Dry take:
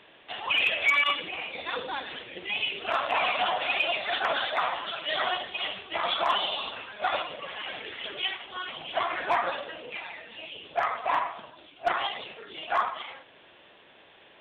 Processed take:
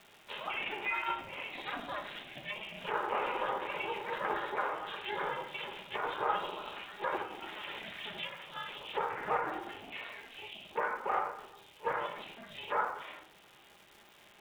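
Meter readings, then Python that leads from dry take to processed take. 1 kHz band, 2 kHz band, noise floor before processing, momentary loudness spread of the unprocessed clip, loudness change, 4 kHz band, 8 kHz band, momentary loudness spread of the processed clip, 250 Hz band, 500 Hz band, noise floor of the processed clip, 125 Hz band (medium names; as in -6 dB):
-6.0 dB, -9.5 dB, -55 dBFS, 13 LU, -8.5 dB, -13.5 dB, no reading, 11 LU, -1.5 dB, -5.0 dB, -60 dBFS, -0.5 dB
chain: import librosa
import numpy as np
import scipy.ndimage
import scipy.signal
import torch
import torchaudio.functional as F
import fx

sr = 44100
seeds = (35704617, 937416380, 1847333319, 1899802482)

y = fx.room_shoebox(x, sr, seeds[0], volume_m3=470.0, walls='furnished', distance_m=1.3)
y = fx.env_lowpass_down(y, sr, base_hz=1600.0, full_db=-26.0)
y = fx.bandpass_edges(y, sr, low_hz=320.0, high_hz=6000.0)
y = fx.dmg_crackle(y, sr, seeds[1], per_s=530.0, level_db=-44.0)
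y = y * np.sin(2.0 * np.pi * 220.0 * np.arange(len(y)) / sr)
y = y * librosa.db_to_amplitude(-3.5)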